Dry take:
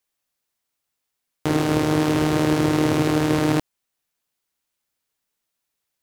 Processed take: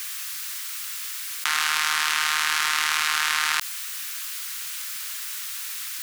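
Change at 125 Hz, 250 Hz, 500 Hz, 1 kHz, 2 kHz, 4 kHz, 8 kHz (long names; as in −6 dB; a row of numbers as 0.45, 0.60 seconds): below −35 dB, below −35 dB, below −30 dB, +0.5 dB, +8.5 dB, +9.0 dB, +10.5 dB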